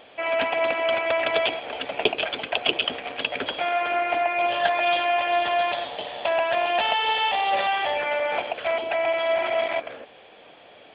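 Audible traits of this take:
background noise floor −50 dBFS
spectral slope +1.5 dB per octave

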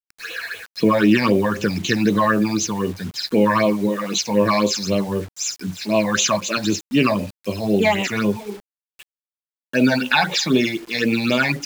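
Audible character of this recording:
phaser sweep stages 8, 3.9 Hz, lowest notch 370–1,600 Hz
a quantiser's noise floor 8 bits, dither none

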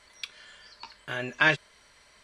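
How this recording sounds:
background noise floor −59 dBFS
spectral slope −1.5 dB per octave

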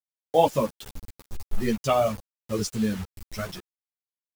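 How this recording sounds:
a quantiser's noise floor 6 bits, dither none
a shimmering, thickened sound

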